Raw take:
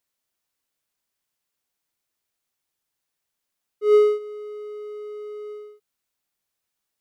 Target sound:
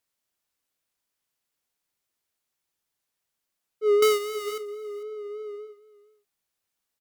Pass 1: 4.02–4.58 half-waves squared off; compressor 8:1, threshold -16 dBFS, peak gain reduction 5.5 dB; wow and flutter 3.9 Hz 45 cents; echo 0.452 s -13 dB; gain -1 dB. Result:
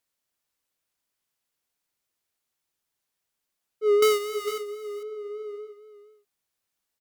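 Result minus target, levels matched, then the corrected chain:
echo-to-direct +6 dB
4.02–4.58 half-waves squared off; compressor 8:1, threshold -16 dBFS, peak gain reduction 5.5 dB; wow and flutter 3.9 Hz 45 cents; echo 0.452 s -19 dB; gain -1 dB

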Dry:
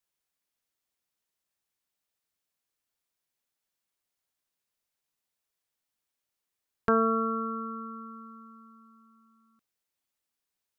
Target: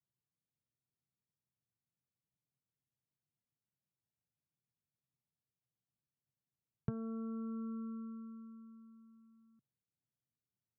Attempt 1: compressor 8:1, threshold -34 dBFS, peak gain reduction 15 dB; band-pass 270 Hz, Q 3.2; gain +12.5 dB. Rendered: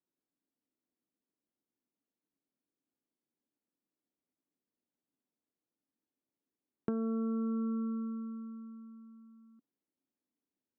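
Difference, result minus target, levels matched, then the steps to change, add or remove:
125 Hz band -8.0 dB
change: band-pass 130 Hz, Q 3.2

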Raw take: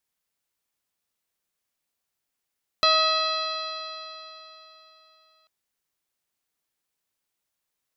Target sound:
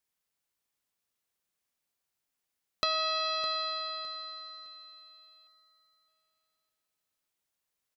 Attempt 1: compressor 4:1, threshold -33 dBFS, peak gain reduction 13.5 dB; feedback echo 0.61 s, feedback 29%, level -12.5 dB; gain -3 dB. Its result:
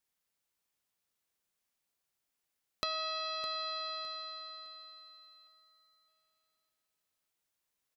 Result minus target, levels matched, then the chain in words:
compressor: peak gain reduction +6.5 dB
compressor 4:1, threshold -24.5 dBFS, peak gain reduction 7 dB; feedback echo 0.61 s, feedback 29%, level -12.5 dB; gain -3 dB

